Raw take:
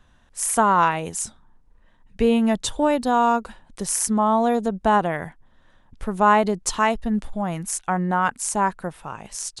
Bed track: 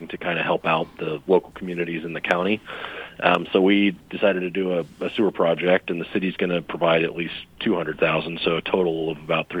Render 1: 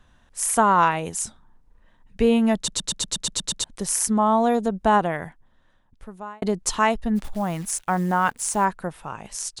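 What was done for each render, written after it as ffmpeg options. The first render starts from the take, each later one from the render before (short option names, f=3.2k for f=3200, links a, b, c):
-filter_complex "[0:a]asplit=3[a][b][c];[a]afade=t=out:st=7.15:d=0.02[d];[b]acrusher=bits=8:dc=4:mix=0:aa=0.000001,afade=t=in:st=7.15:d=0.02,afade=t=out:st=8.64:d=0.02[e];[c]afade=t=in:st=8.64:d=0.02[f];[d][e][f]amix=inputs=3:normalize=0,asplit=11[g][h][i][j][k][l][m][n][o][p][q];[g]atrim=end=2.682[r];[h]atrim=start=2.558:end=2.682[s];[i]atrim=start=2.558:end=2.682[t];[j]atrim=start=2.558:end=2.682[u];[k]atrim=start=2.558:end=2.682[v];[l]atrim=start=2.558:end=2.682[w];[m]atrim=start=2.558:end=2.682[x];[n]atrim=start=2.558:end=2.682[y];[o]atrim=start=2.558:end=2.682[z];[p]atrim=start=3.638:end=6.42,asetpts=PTS-STARTPTS,afade=t=out:st=1.322:d=1.46[aa];[q]atrim=start=6.42,asetpts=PTS-STARTPTS,afade=t=in:d=0.004:c=hsin[ab];[r][s]acrossfade=d=0.004:c1=hsin:c2=hsin[ac];[ac][t]acrossfade=d=0.004:c1=hsin:c2=hsin[ad];[ad][u]acrossfade=d=0.004:c1=hsin:c2=hsin[ae];[ae][v]acrossfade=d=0.004:c1=hsin:c2=hsin[af];[af][w]acrossfade=d=0.004:c1=hsin:c2=hsin[ag];[ag][x]acrossfade=d=0.004:c1=hsin:c2=hsin[ah];[ah][y]acrossfade=d=0.004:c1=hsin:c2=hsin[ai];[ai][z]acrossfade=d=0.004:c1=hsin:c2=hsin[aj];[aa][ab]concat=n=2:v=0:a=1[ak];[aj][ak]acrossfade=d=0.004:c1=hsin:c2=hsin"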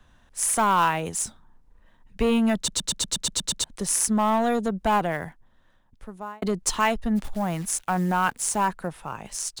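-filter_complex "[0:a]acrossover=split=170|1300[a][b][c];[b]asoftclip=type=tanh:threshold=-19dB[d];[c]acrusher=bits=4:mode=log:mix=0:aa=0.000001[e];[a][d][e]amix=inputs=3:normalize=0"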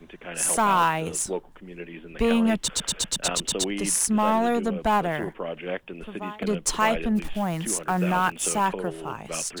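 -filter_complex "[1:a]volume=-12.5dB[a];[0:a][a]amix=inputs=2:normalize=0"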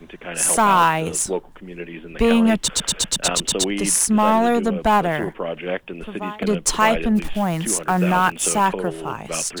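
-af "volume=5.5dB,alimiter=limit=-2dB:level=0:latency=1"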